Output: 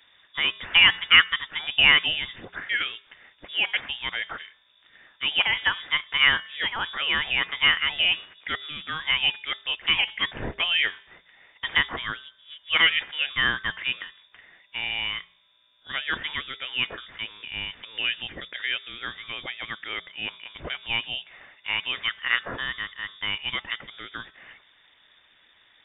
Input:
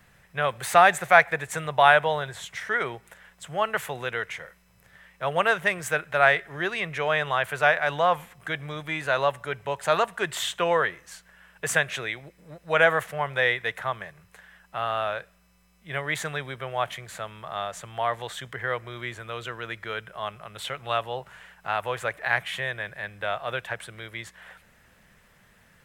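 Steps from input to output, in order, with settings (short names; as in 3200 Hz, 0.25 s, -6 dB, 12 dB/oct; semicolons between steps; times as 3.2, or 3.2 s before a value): de-hum 228.4 Hz, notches 37; inverted band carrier 3600 Hz; harmonic-percussive split percussive +4 dB; gain -2.5 dB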